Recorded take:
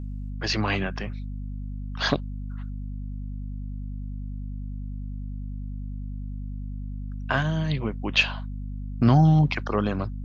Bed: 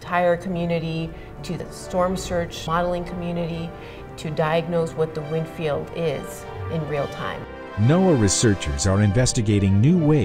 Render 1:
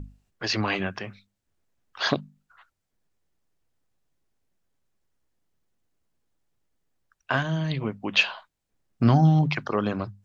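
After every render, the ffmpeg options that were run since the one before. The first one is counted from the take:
-af "bandreject=f=50:t=h:w=6,bandreject=f=100:t=h:w=6,bandreject=f=150:t=h:w=6,bandreject=f=200:t=h:w=6,bandreject=f=250:t=h:w=6"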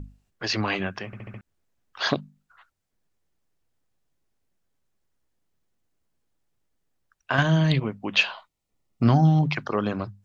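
-filter_complex "[0:a]asettb=1/sr,asplit=3[a][b][c];[a]atrim=end=7.384[d];[b]atrim=start=7.38:end=7.8,asetpts=PTS-STARTPTS,afade=t=in:d=0.004:c=qsin,afade=t=out:st=0.416:d=0.004:c=qsin,acontrast=78[e];[c]atrim=start=7.796[f];[d][e]acrossfade=d=0.004:c1=hsin:c2=qsin[g];[g][f]acrossfade=d=0.004:c1=qsin:c2=hsin,asettb=1/sr,asplit=3[h][i][j];[h]atrim=end=8.354[k];[i]atrim=start=8.35:end=9.06,asetpts=PTS-STARTPTS,afade=t=in:d=0.004:c=qsin,afade=t=out:st=0.706:d=0.004:c=qsin,asuperstop=centerf=1600:order=4:qfactor=5.6[l];[j]atrim=start=9.056[m];[k][l]acrossfade=d=0.004:c1=hsin:c2=qsin[n];[n][m]acrossfade=d=0.004:c1=qsin:c2=hsin,asplit=6[o][p][q][r][s][t];[o]atrim=end=1.132[u];[p]atrim=start=1.058:end=1.132[v];[q]atrim=start=1.058:end=1.132[w];[r]atrim=start=1.058:end=1.132[x];[s]atrim=start=1.058:end=1.132[y];[t]atrim=start=1.408[z];[u][v]acrossfade=d=0.004:c1=hsin:c2=hsin[aa];[aa][w]acrossfade=d=0.004:c1=hsin:c2=hsin[ab];[ab][x]acrossfade=d=0.004:c1=hsin:c2=hsin[ac];[ac][y]acrossfade=d=0.004:c1=hsin:c2=hsin[ad];[ad][z]acrossfade=d=0.004:c1=hsin:c2=hsin"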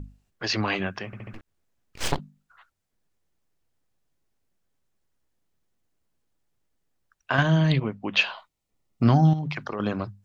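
-filter_complex "[0:a]asettb=1/sr,asplit=3[a][b][c];[a]atrim=end=1.334[d];[b]atrim=start=1.33:end=2.19,asetpts=PTS-STARTPTS,afade=t=in:d=0.004:c=qsin,afade=t=out:st=0.856:d=0.004:c=qsin,aeval=exprs='abs(val(0))':c=same[e];[c]atrim=start=2.186[f];[d][e]acrossfade=d=0.004:c1=hsin:c2=qsin[g];[g][f]acrossfade=d=0.004:c1=qsin:c2=hsin,asettb=1/sr,asplit=3[h][i][j];[h]atrim=end=7.374[k];[i]atrim=start=7.37:end=8.27,asetpts=PTS-STARTPTS,afade=t=in:d=0.004:c=qsin,afade=t=out:st=0.896:d=0.004:c=qsin,highshelf=f=5.8k:g=-6[l];[j]atrim=start=8.266[m];[k][l]acrossfade=d=0.004:c1=hsin:c2=qsin[n];[n][m]acrossfade=d=0.004:c1=qsin:c2=hsin,asettb=1/sr,asplit=3[o][p][q];[o]atrim=end=9.334[r];[p]atrim=start=9.33:end=9.8,asetpts=PTS-STARTPTS,afade=t=in:d=0.004:c=qsin,afade=t=out:st=0.466:d=0.004:c=qsin,acompressor=threshold=-26dB:ratio=10:attack=3.2:release=140:knee=1:detection=peak[s];[q]atrim=start=9.796[t];[r][s]acrossfade=d=0.004:c1=hsin:c2=qsin[u];[u][t]acrossfade=d=0.004:c1=qsin:c2=hsin"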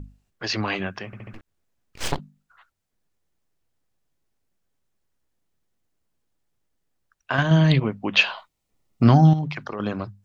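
-filter_complex "[0:a]asplit=3[a][b][c];[a]atrim=end=7.512[d];[b]atrim=start=7.508:end=9.452,asetpts=PTS-STARTPTS,volume=4dB[e];[c]atrim=start=9.448[f];[d][e]acrossfade=d=0.004:c1=hsin:c2=hsin[g];[g][f]acrossfade=d=0.004:c1=hsin:c2=hsin"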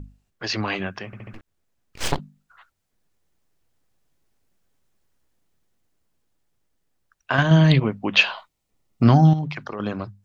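-af "dynaudnorm=f=270:g=17:m=8.5dB"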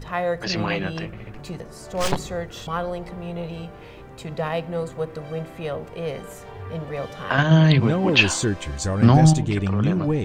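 -filter_complex "[1:a]volume=-5dB[a];[0:a][a]amix=inputs=2:normalize=0"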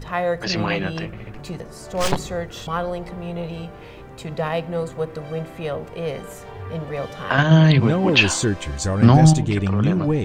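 -af "volume=2dB,alimiter=limit=-2dB:level=0:latency=1"

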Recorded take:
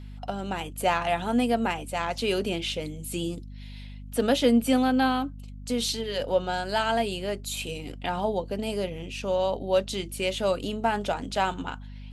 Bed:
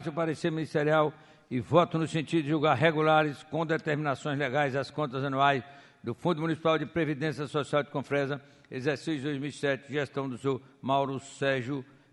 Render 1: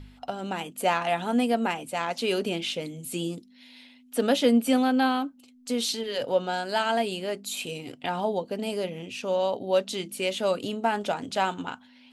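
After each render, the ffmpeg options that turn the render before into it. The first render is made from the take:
-af "bandreject=f=50:t=h:w=4,bandreject=f=100:t=h:w=4,bandreject=f=150:t=h:w=4,bandreject=f=200:t=h:w=4"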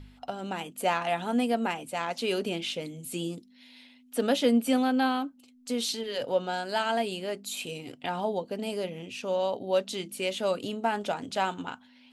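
-af "volume=-2.5dB"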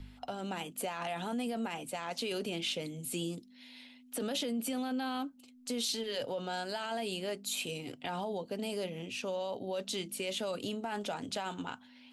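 -filter_complex "[0:a]alimiter=limit=-24dB:level=0:latency=1:release=11,acrossover=split=130|3000[a][b][c];[b]acompressor=threshold=-41dB:ratio=1.5[d];[a][d][c]amix=inputs=3:normalize=0"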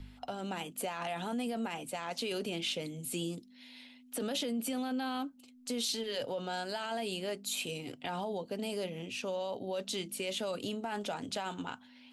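-af anull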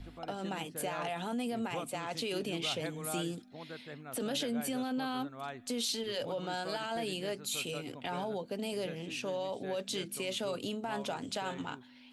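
-filter_complex "[1:a]volume=-18dB[a];[0:a][a]amix=inputs=2:normalize=0"

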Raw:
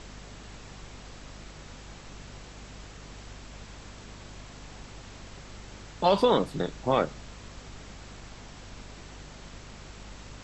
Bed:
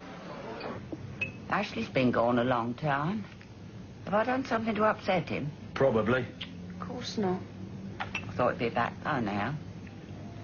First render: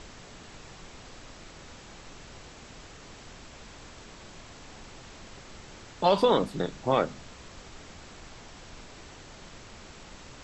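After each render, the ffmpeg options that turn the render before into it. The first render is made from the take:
-af "bandreject=f=50:t=h:w=4,bandreject=f=100:t=h:w=4,bandreject=f=150:t=h:w=4,bandreject=f=200:t=h:w=4,bandreject=f=250:t=h:w=4"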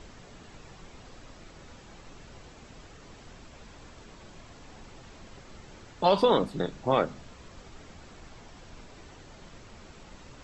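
-af "afftdn=nr=6:nf=-49"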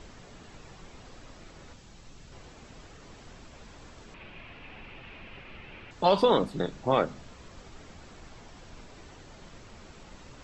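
-filter_complex "[0:a]asettb=1/sr,asplit=3[a][b][c];[a]atrim=end=1.734[d];[b]atrim=start=1.73:end=2.32,asetpts=PTS-STARTPTS,afade=t=in:d=0.004:c=qsin,afade=t=out:st=0.586:d=0.004:c=qsin,acrossover=split=220|3000[e][f][g];[f]acompressor=threshold=-56dB:ratio=6:attack=3.2:release=140:knee=2.83:detection=peak[h];[e][h][g]amix=inputs=3:normalize=0[i];[c]atrim=start=2.316[j];[d][i]acrossfade=d=0.004:c1=hsin:c2=qsin[k];[k][j]acrossfade=d=0.004:c1=qsin:c2=hsin,asettb=1/sr,asplit=3[l][m][n];[l]atrim=end=4.144[o];[m]atrim=start=4.14:end=5.91,asetpts=PTS-STARTPTS,afade=t=in:d=0.004:c=qsin,afade=t=out:st=1.766:d=0.004:c=qsin,lowpass=f=2.6k:t=q:w=4.7[p];[n]atrim=start=5.906[q];[o][p]acrossfade=d=0.004:c1=hsin:c2=qsin[r];[r][q]acrossfade=d=0.004:c1=qsin:c2=hsin"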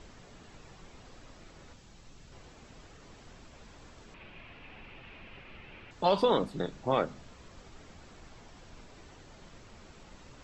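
-af "volume=-3.5dB"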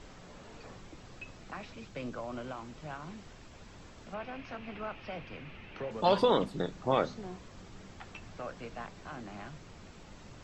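-filter_complex "[1:a]volume=-14dB[a];[0:a][a]amix=inputs=2:normalize=0"

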